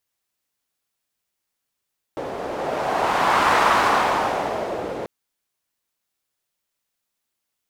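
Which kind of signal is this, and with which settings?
wind-like swept noise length 2.89 s, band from 510 Hz, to 1100 Hz, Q 1.9, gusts 1, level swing 12 dB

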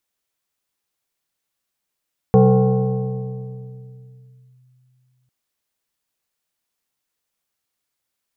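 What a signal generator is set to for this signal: FM tone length 2.95 s, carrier 127 Hz, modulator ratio 2.51, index 1.5, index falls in 2.27 s linear, decay 3.14 s, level -7 dB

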